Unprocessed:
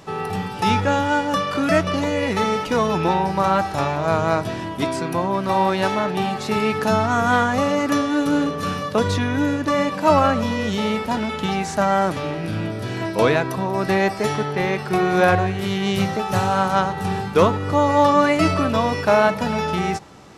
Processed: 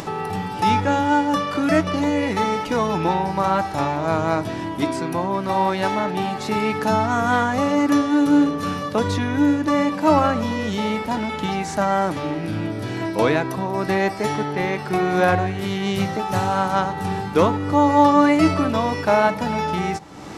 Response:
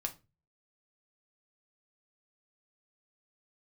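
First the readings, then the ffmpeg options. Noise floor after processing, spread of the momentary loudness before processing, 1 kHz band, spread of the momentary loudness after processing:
-29 dBFS, 7 LU, 0.0 dB, 8 LU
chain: -filter_complex "[0:a]asplit=2[a][b];[b]asplit=3[c][d][e];[c]bandpass=f=300:t=q:w=8,volume=0dB[f];[d]bandpass=f=870:t=q:w=8,volume=-6dB[g];[e]bandpass=f=2.24k:t=q:w=8,volume=-9dB[h];[f][g][h]amix=inputs=3:normalize=0[i];[1:a]atrim=start_sample=2205,lowpass=3.4k[j];[i][j]afir=irnorm=-1:irlink=0,volume=1dB[k];[a][k]amix=inputs=2:normalize=0,acompressor=mode=upward:threshold=-21dB:ratio=2.5,volume=-2dB"

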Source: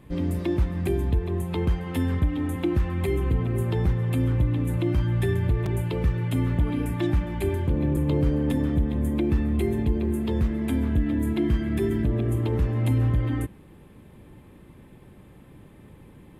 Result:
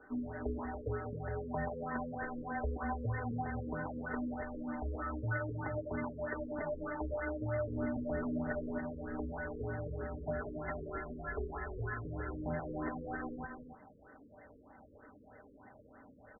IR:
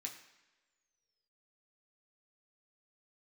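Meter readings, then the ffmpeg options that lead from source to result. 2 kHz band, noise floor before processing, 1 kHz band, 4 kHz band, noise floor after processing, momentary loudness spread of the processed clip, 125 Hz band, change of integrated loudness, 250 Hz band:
-3.0 dB, -50 dBFS, -2.0 dB, under -40 dB, -60 dBFS, 21 LU, -18.5 dB, -14.5 dB, -14.5 dB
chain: -filter_complex "[0:a]afftfilt=real='re*pow(10,10/40*sin(2*PI*(0.79*log(max(b,1)*sr/1024/100)/log(2)-(-2.2)*(pts-256)/sr)))':imag='im*pow(10,10/40*sin(2*PI*(0.79*log(max(b,1)*sr/1024/100)/log(2)-(-2.2)*(pts-256)/sr)))':win_size=1024:overlap=0.75,aecho=1:1:5.6:0.47,highpass=f=560:t=q:w=0.5412,highpass=f=560:t=q:w=1.307,lowpass=f=3k:t=q:w=0.5176,lowpass=f=3k:t=q:w=0.7071,lowpass=f=3k:t=q:w=1.932,afreqshift=-280,asplit=2[a][b];[b]asoftclip=type=tanh:threshold=-39dB,volume=-8dB[c];[a][c]amix=inputs=2:normalize=0,crystalizer=i=2.5:c=0,asplit=2[d][e];[e]aecho=0:1:186.6|282.8:0.316|0.355[f];[d][f]amix=inputs=2:normalize=0,afftfilt=real='re*lt(b*sr/1024,540*pow(2100/540,0.5+0.5*sin(2*PI*3.2*pts/sr)))':imag='im*lt(b*sr/1024,540*pow(2100/540,0.5+0.5*sin(2*PI*3.2*pts/sr)))':win_size=1024:overlap=0.75,volume=-2dB"

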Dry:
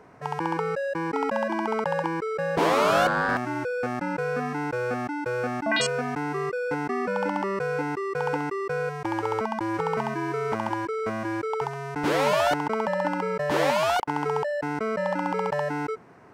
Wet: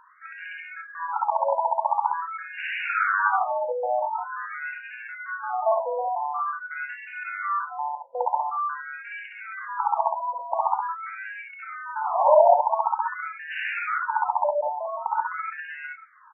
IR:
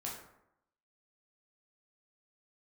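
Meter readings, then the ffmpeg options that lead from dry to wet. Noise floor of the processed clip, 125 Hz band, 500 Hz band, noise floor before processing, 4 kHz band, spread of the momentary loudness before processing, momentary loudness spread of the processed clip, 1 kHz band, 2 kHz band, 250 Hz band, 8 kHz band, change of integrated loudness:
-44 dBFS, under -40 dB, -1.5 dB, -34 dBFS, under -10 dB, 7 LU, 14 LU, +4.0 dB, 0.0 dB, under -40 dB, under -40 dB, +0.5 dB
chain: -filter_complex "[0:a]highpass=490,lowpass=5.2k,equalizer=f=1.8k:t=o:w=1.5:g=-9.5,aecho=1:1:57|70:0.708|0.531,asplit=2[a][b];[1:a]atrim=start_sample=2205,atrim=end_sample=3528,asetrate=70560,aresample=44100[c];[b][c]afir=irnorm=-1:irlink=0,volume=-2dB[d];[a][d]amix=inputs=2:normalize=0,afftfilt=real='re*between(b*sr/1024,710*pow(2100/710,0.5+0.5*sin(2*PI*0.46*pts/sr))/1.41,710*pow(2100/710,0.5+0.5*sin(2*PI*0.46*pts/sr))*1.41)':imag='im*between(b*sr/1024,710*pow(2100/710,0.5+0.5*sin(2*PI*0.46*pts/sr))/1.41,710*pow(2100/710,0.5+0.5*sin(2*PI*0.46*pts/sr))*1.41)':win_size=1024:overlap=0.75,volume=7dB"

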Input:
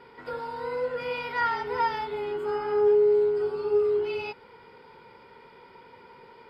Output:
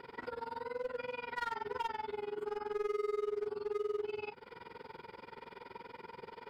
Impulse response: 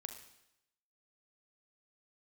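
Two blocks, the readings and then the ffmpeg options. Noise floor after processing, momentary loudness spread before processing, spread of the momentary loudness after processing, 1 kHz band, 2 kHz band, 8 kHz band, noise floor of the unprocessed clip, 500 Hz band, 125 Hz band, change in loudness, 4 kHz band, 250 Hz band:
-58 dBFS, 14 LU, 14 LU, -10.5 dB, -10.5 dB, n/a, -53 dBFS, -13.0 dB, under -10 dB, -13.5 dB, -9.5 dB, -10.0 dB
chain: -filter_complex "[0:a]acrossover=split=3000[a][b];[b]acompressor=threshold=-52dB:ratio=4:attack=1:release=60[c];[a][c]amix=inputs=2:normalize=0,asoftclip=type=hard:threshold=-24.5dB,alimiter=level_in=11dB:limit=-24dB:level=0:latency=1:release=218,volume=-11dB,tremolo=f=21:d=0.947,bandreject=f=50:t=h:w=6,bandreject=f=100:t=h:w=6,bandreject=f=150:t=h:w=6,volume=4.5dB"

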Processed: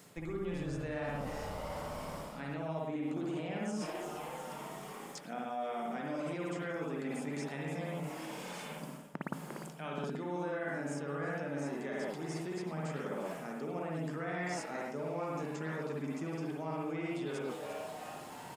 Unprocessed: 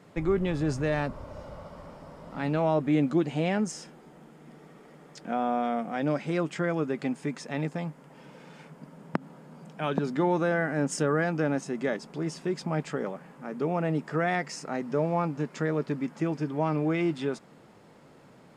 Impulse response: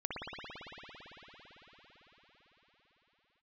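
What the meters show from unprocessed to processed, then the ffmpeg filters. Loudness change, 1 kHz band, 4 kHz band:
-10.0 dB, -8.0 dB, -6.0 dB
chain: -filter_complex "[0:a]acrossover=split=2600[a][b];[b]acompressor=threshold=-53dB:ratio=4:attack=1:release=60[c];[a][c]amix=inputs=2:normalize=0,highshelf=f=3.6k:g=9,asplit=2[d][e];[e]asplit=5[f][g][h][i][j];[f]adelay=351,afreqshift=150,volume=-18dB[k];[g]adelay=702,afreqshift=300,volume=-22.4dB[l];[h]adelay=1053,afreqshift=450,volume=-26.9dB[m];[i]adelay=1404,afreqshift=600,volume=-31.3dB[n];[j]adelay=1755,afreqshift=750,volume=-35.7dB[o];[k][l][m][n][o]amix=inputs=5:normalize=0[p];[d][p]amix=inputs=2:normalize=0[q];[1:a]atrim=start_sample=2205,afade=t=out:st=0.22:d=0.01,atrim=end_sample=10143[r];[q][r]afir=irnorm=-1:irlink=0,areverse,acompressor=threshold=-38dB:ratio=5,areverse,crystalizer=i=2.5:c=0,volume=1dB"

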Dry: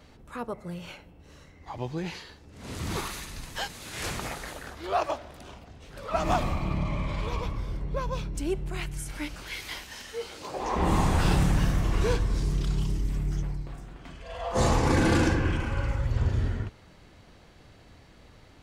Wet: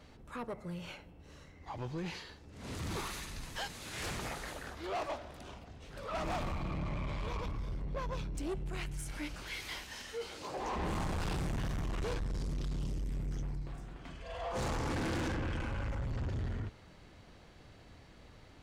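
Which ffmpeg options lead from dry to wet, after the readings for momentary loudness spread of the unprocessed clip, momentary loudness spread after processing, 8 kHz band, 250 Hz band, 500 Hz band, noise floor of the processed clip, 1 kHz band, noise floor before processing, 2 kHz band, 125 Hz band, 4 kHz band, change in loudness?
18 LU, 19 LU, -8.5 dB, -10.0 dB, -9.5 dB, -57 dBFS, -9.5 dB, -54 dBFS, -8.0 dB, -10.0 dB, -7.0 dB, -10.0 dB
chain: -af "asoftclip=type=tanh:threshold=-30dB,highshelf=f=11k:g=-5,volume=-3dB"

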